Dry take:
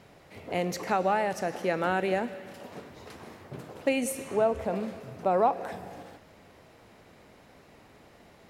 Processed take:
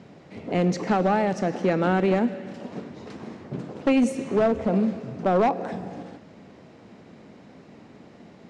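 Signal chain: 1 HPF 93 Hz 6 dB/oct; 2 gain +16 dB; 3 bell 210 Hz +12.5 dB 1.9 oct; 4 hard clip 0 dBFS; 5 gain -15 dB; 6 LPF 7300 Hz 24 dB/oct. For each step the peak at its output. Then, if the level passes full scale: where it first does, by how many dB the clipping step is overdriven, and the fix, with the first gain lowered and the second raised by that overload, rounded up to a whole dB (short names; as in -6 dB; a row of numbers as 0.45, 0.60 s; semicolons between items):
-12.5, +3.5, +8.0, 0.0, -15.0, -14.5 dBFS; step 2, 8.0 dB; step 2 +8 dB, step 5 -7 dB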